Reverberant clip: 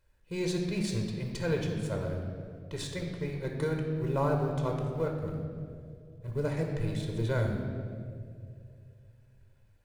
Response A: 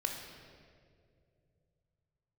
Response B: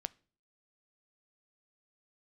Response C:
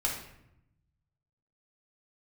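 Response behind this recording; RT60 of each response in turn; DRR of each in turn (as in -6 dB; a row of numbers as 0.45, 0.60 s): A; 2.3, 0.45, 0.80 s; 2.0, 16.5, -3.0 dB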